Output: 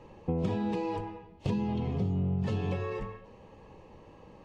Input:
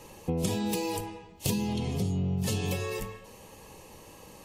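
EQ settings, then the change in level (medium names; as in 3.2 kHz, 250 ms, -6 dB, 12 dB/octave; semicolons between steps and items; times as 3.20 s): dynamic bell 1.3 kHz, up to +5 dB, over -50 dBFS, Q 0.98; tape spacing loss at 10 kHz 35 dB; 0.0 dB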